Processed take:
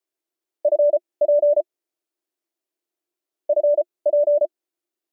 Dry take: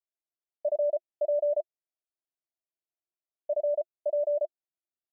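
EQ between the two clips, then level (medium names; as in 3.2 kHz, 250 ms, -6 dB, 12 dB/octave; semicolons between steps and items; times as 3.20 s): resonant high-pass 330 Hz, resonance Q 4; +7.0 dB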